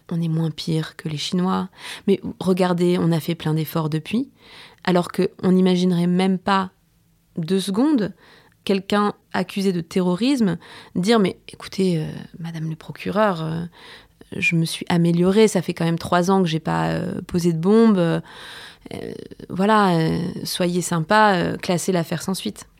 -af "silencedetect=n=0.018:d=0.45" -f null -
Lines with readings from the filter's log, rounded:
silence_start: 6.68
silence_end: 7.36 | silence_duration: 0.68
silence_start: 8.11
silence_end: 8.67 | silence_duration: 0.56